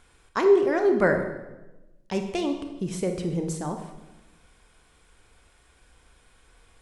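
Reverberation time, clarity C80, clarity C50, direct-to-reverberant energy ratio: 1.0 s, 9.5 dB, 7.0 dB, 5.0 dB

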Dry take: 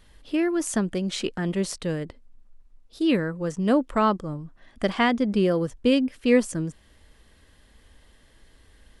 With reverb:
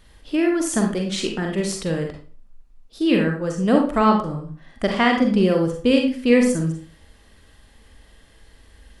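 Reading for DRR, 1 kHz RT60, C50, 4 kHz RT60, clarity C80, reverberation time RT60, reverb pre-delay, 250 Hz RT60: 1.5 dB, 0.40 s, 5.0 dB, 0.35 s, 10.0 dB, 0.40 s, 37 ms, 0.45 s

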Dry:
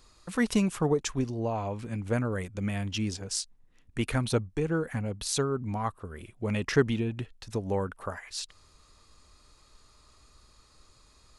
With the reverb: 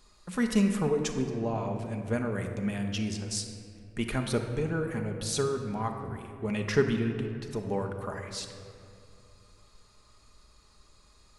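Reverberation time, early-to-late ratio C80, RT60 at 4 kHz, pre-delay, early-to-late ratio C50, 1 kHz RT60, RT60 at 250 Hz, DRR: 2.4 s, 7.5 dB, 1.3 s, 5 ms, 6.0 dB, 2.1 s, 2.9 s, 3.5 dB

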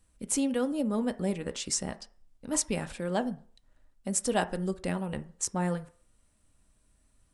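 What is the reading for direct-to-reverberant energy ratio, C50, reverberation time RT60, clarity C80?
8.0 dB, 17.5 dB, 0.45 s, 22.0 dB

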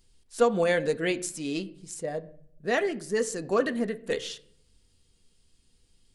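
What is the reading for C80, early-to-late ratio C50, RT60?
21.0 dB, 18.5 dB, 0.65 s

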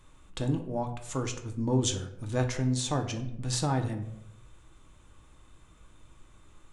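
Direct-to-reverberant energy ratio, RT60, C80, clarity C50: 5.0 dB, 0.85 s, 13.5 dB, 10.0 dB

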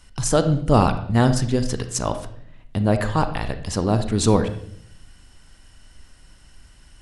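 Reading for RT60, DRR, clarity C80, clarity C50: 0.65 s, 9.0 dB, 13.5 dB, 11.0 dB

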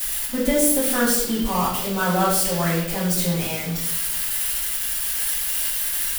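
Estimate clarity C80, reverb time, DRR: 5.5 dB, 0.85 s, -10.0 dB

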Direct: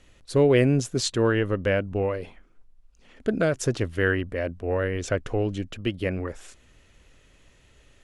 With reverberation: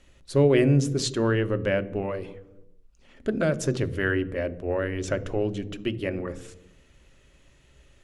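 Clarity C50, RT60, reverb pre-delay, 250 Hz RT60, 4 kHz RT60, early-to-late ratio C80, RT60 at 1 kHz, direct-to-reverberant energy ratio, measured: 17.5 dB, 1.0 s, 3 ms, 1.2 s, 0.65 s, 19.5 dB, 0.95 s, 11.0 dB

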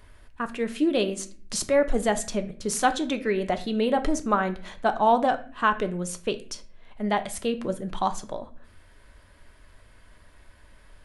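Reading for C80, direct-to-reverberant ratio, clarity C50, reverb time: 19.0 dB, 8.0 dB, 14.5 dB, 0.45 s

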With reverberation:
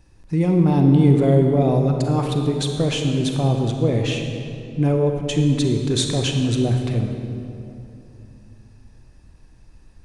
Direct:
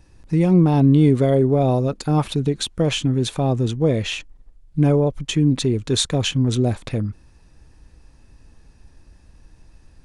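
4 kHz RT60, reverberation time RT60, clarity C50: 1.7 s, 2.8 s, 4.0 dB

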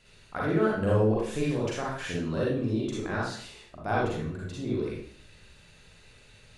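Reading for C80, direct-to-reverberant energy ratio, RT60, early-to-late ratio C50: 4.5 dB, -6.0 dB, 0.55 s, -1.0 dB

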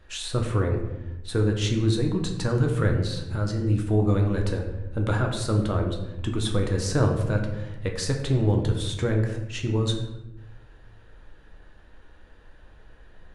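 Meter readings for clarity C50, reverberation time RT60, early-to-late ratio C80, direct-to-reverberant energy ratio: 6.0 dB, 0.95 s, 8.5 dB, 1.5 dB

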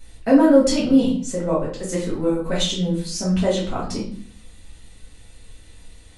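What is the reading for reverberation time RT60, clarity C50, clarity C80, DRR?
0.50 s, 5.5 dB, 10.5 dB, -8.0 dB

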